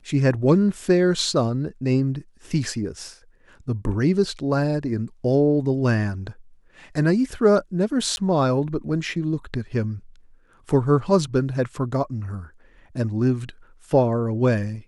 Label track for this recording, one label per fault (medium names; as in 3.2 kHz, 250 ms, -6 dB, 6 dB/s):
8.160000	8.170000	dropout 11 ms